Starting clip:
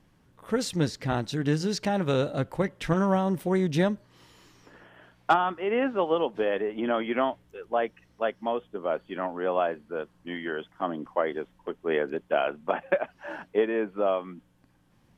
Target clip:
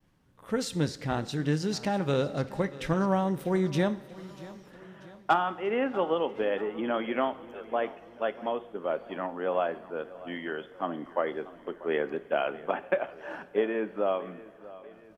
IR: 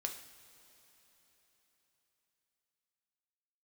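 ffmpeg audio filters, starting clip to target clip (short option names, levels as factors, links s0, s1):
-filter_complex "[0:a]agate=range=0.0224:threshold=0.00112:ratio=3:detection=peak,aecho=1:1:639|1278|1917|2556:0.119|0.063|0.0334|0.0177,asplit=2[s0][s1];[1:a]atrim=start_sample=2205[s2];[s1][s2]afir=irnorm=-1:irlink=0,volume=0.631[s3];[s0][s3]amix=inputs=2:normalize=0,volume=0.501"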